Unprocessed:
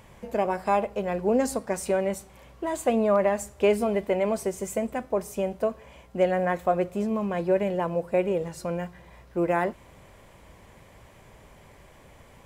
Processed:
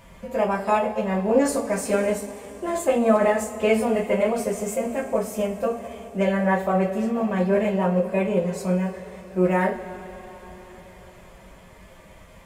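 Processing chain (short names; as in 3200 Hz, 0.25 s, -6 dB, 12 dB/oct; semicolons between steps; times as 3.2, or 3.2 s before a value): two-slope reverb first 0.26 s, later 4.5 s, from -22 dB, DRR -4.5 dB; formant-preserving pitch shift +1 st; gain -1.5 dB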